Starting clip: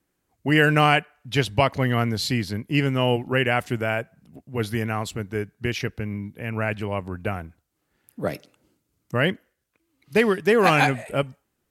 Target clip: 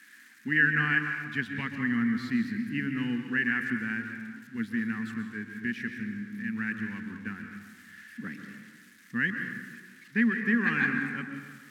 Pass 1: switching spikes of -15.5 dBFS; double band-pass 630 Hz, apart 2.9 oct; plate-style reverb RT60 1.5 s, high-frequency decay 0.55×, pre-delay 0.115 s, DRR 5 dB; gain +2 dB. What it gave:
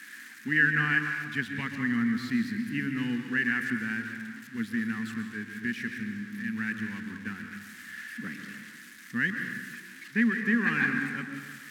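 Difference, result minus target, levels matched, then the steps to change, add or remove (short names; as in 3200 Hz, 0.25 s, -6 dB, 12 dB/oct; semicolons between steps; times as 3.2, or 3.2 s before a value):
switching spikes: distortion +8 dB
change: switching spikes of -23.5 dBFS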